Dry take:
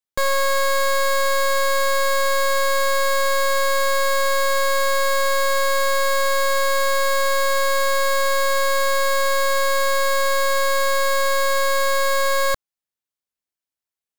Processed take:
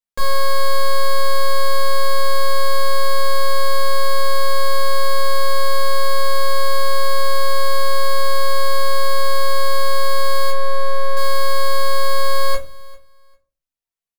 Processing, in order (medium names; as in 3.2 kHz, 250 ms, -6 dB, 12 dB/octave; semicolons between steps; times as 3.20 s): 10.50–11.17 s: treble shelf 2.4 kHz -12 dB; feedback delay 397 ms, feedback 19%, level -22 dB; simulated room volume 190 m³, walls furnished, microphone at 1.7 m; trim -5.5 dB